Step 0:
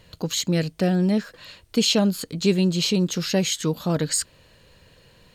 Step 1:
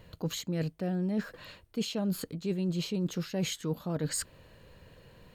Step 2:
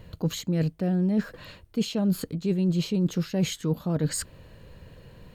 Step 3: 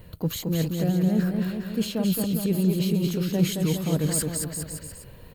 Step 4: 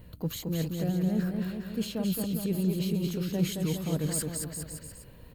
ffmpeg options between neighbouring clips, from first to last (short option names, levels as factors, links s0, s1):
-af "equalizer=f=5700:t=o:w=2.5:g=-9.5,areverse,acompressor=threshold=0.0355:ratio=6,areverse"
-af "lowshelf=f=310:g=6.5,volume=1.33"
-af "aexciter=amount=4.2:drive=2.4:freq=8800,aecho=1:1:220|407|566|701.1|815.9:0.631|0.398|0.251|0.158|0.1"
-af "aeval=exprs='val(0)+0.00398*(sin(2*PI*60*n/s)+sin(2*PI*2*60*n/s)/2+sin(2*PI*3*60*n/s)/3+sin(2*PI*4*60*n/s)/4+sin(2*PI*5*60*n/s)/5)':c=same,volume=0.531"